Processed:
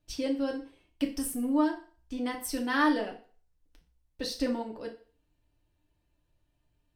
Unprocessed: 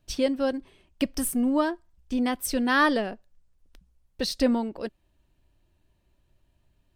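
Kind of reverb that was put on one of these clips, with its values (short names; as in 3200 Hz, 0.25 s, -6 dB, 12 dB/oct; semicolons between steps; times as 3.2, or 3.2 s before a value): FDN reverb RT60 0.41 s, low-frequency decay 0.8×, high-frequency decay 0.95×, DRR 0.5 dB; gain -8.5 dB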